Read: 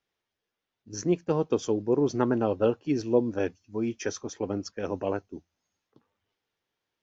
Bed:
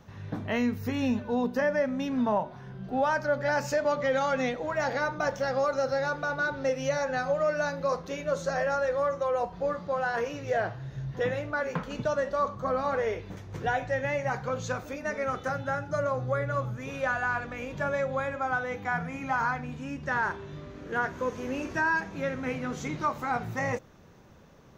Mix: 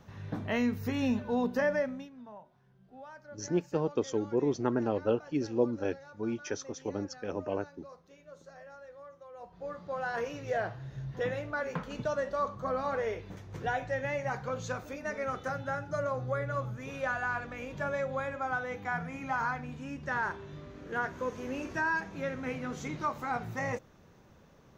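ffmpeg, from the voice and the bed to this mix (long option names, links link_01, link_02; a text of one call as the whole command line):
ffmpeg -i stem1.wav -i stem2.wav -filter_complex "[0:a]adelay=2450,volume=-4.5dB[link_01];[1:a]volume=16.5dB,afade=type=out:start_time=1.73:duration=0.37:silence=0.0944061,afade=type=in:start_time=9.33:duration=0.88:silence=0.11885[link_02];[link_01][link_02]amix=inputs=2:normalize=0" out.wav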